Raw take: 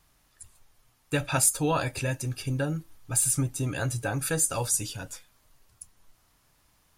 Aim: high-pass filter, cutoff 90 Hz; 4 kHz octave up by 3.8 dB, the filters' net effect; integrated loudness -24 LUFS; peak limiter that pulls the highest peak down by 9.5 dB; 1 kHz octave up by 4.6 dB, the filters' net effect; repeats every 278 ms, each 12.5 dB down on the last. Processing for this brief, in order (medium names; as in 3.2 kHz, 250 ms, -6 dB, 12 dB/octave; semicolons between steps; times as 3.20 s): high-pass 90 Hz; peaking EQ 1 kHz +5.5 dB; peaking EQ 4 kHz +4.5 dB; peak limiter -19.5 dBFS; feedback delay 278 ms, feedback 24%, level -12.5 dB; trim +6 dB